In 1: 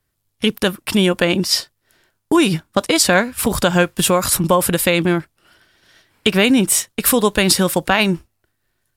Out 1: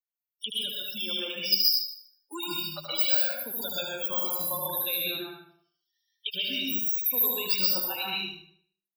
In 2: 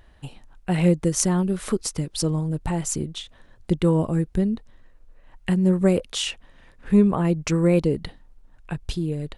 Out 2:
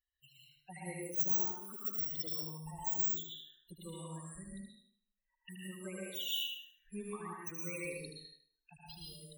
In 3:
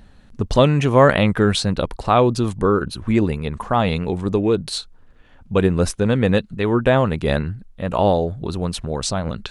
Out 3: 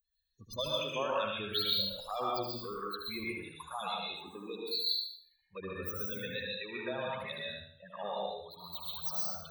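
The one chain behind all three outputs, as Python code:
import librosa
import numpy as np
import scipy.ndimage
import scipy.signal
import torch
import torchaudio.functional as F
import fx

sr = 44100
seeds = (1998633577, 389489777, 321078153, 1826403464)

y = scipy.signal.medfilt(x, 5)
y = fx.noise_reduce_blind(y, sr, reduce_db=14)
y = scipy.signal.lfilter([1.0, -0.97], [1.0], y)
y = fx.dereverb_blind(y, sr, rt60_s=0.85)
y = fx.high_shelf(y, sr, hz=8800.0, db=11.0)
y = fx.spec_topn(y, sr, count=16)
y = fx.env_phaser(y, sr, low_hz=220.0, high_hz=1900.0, full_db=-35.5)
y = fx.echo_feedback(y, sr, ms=76, feedback_pct=27, wet_db=-5.5)
y = fx.rev_plate(y, sr, seeds[0], rt60_s=0.54, hf_ratio=1.0, predelay_ms=105, drr_db=-4.0)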